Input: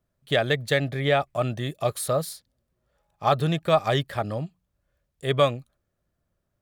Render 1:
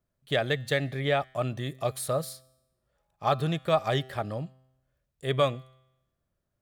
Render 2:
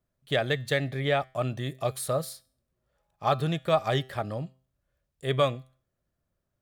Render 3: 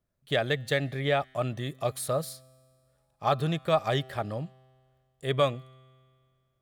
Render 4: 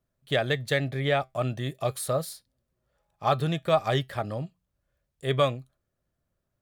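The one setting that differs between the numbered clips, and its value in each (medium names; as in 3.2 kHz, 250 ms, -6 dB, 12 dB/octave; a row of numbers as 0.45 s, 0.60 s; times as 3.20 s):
feedback comb, decay: 0.91 s, 0.43 s, 2.1 s, 0.17 s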